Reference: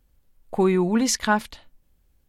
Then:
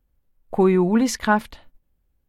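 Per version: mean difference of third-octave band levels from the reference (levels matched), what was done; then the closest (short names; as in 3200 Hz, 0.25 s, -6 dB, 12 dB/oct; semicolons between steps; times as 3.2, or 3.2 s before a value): 2.0 dB: bell 6500 Hz -8.5 dB 2.3 oct; gate -50 dBFS, range -8 dB; gain +3 dB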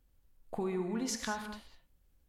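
6.0 dB: compressor 3:1, threshold -29 dBFS, peak gain reduction 11 dB; non-linear reverb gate 0.23 s flat, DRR 5.5 dB; gain -7 dB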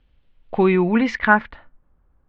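4.5 dB: LPF 4500 Hz 12 dB/oct; low-pass sweep 3100 Hz -> 1200 Hz, 0.62–1.92; gain +3 dB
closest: first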